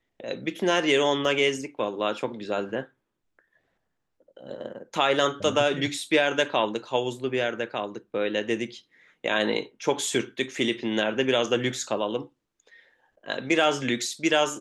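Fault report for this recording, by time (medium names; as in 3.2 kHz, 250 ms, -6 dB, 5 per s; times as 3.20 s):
1.25 s: dropout 2 ms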